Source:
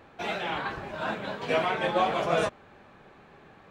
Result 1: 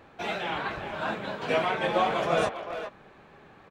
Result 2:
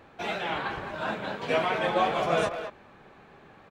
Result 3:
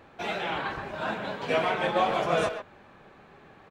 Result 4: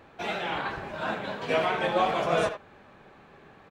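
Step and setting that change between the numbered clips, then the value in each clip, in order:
far-end echo of a speakerphone, delay time: 400, 210, 130, 80 milliseconds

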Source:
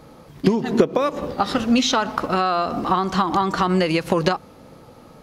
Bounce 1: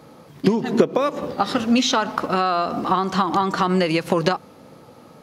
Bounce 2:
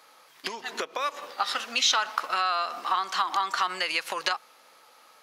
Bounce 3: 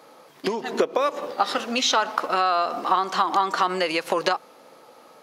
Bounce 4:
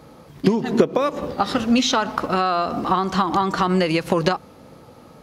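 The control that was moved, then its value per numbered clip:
high-pass filter, corner frequency: 110, 1,300, 500, 44 Hertz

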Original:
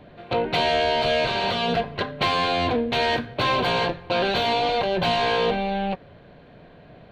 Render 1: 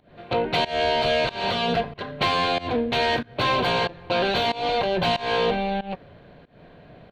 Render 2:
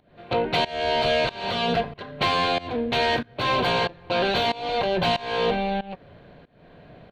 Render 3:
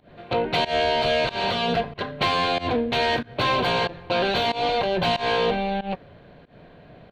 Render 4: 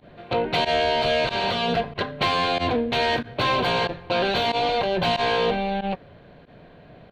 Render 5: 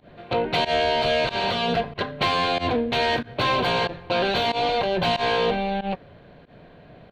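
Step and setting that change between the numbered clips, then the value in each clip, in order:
fake sidechain pumping, release: 240, 408, 153, 61, 95 milliseconds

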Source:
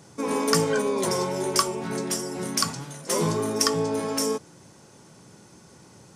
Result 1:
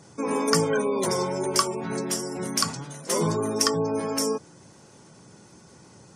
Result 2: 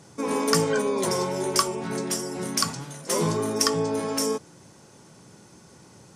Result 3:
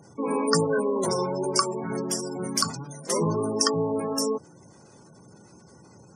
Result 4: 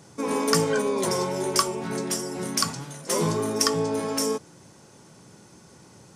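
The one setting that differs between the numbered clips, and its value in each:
gate on every frequency bin, under each frame's peak: −30, −45, −20, −60 decibels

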